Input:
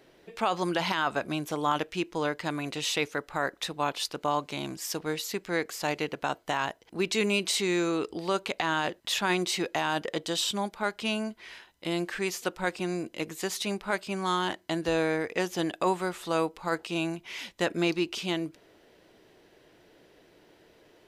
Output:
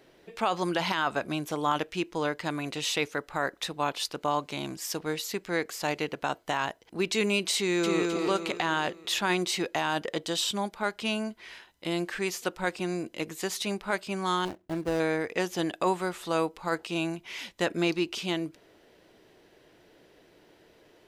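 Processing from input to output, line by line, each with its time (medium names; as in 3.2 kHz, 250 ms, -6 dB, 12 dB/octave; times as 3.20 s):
7.57–8.07 s: echo throw 260 ms, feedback 45%, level -2.5 dB
14.45–15.00 s: median filter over 41 samples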